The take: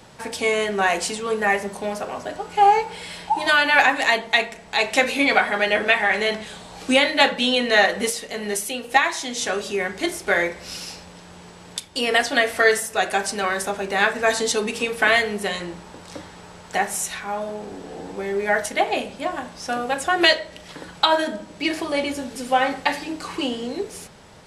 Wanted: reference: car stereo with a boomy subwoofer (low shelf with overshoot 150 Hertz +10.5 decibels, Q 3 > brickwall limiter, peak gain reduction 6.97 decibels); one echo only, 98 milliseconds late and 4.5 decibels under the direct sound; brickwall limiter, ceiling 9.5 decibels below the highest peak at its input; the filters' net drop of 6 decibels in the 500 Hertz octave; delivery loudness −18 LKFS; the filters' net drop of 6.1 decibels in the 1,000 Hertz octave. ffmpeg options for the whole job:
ffmpeg -i in.wav -af "equalizer=frequency=500:width_type=o:gain=-4.5,equalizer=frequency=1000:width_type=o:gain=-6,alimiter=limit=-12dB:level=0:latency=1,lowshelf=frequency=150:width_type=q:width=3:gain=10.5,aecho=1:1:98:0.596,volume=8.5dB,alimiter=limit=-7.5dB:level=0:latency=1" out.wav

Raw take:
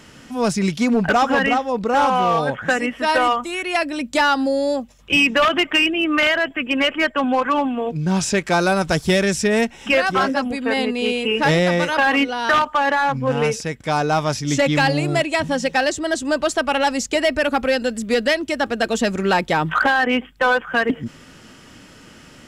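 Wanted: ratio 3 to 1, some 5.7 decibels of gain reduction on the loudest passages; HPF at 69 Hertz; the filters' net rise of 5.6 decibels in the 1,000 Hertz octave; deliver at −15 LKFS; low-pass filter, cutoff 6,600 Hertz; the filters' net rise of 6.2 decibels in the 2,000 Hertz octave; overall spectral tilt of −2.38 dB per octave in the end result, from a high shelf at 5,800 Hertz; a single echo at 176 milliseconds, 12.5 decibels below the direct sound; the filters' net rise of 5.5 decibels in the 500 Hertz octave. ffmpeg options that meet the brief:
ffmpeg -i in.wav -af "highpass=69,lowpass=6600,equalizer=frequency=500:width_type=o:gain=5,equalizer=frequency=1000:width_type=o:gain=4,equalizer=frequency=2000:width_type=o:gain=6,highshelf=frequency=5800:gain=4.5,acompressor=threshold=-15dB:ratio=3,aecho=1:1:176:0.237,volume=3dB" out.wav

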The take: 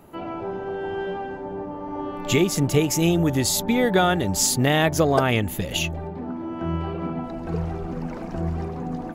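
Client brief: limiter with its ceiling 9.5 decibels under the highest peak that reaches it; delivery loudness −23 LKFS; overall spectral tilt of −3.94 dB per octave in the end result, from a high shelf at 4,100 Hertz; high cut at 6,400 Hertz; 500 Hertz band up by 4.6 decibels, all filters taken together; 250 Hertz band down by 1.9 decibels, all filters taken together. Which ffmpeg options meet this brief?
ffmpeg -i in.wav -af "lowpass=6400,equalizer=frequency=250:width_type=o:gain=-6,equalizer=frequency=500:width_type=o:gain=7.5,highshelf=frequency=4100:gain=8.5,volume=1dB,alimiter=limit=-10dB:level=0:latency=1" out.wav

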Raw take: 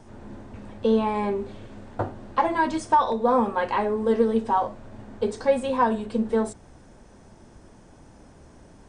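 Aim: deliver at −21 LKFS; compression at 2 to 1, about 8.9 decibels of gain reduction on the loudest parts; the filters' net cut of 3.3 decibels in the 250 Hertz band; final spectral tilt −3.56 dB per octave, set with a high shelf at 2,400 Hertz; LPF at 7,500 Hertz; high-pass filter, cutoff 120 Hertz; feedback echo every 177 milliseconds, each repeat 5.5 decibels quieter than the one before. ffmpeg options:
ffmpeg -i in.wav -af "highpass=120,lowpass=7500,equalizer=frequency=250:width_type=o:gain=-3.5,highshelf=frequency=2400:gain=6.5,acompressor=threshold=-31dB:ratio=2,aecho=1:1:177|354|531|708|885|1062|1239:0.531|0.281|0.149|0.079|0.0419|0.0222|0.0118,volume=9.5dB" out.wav

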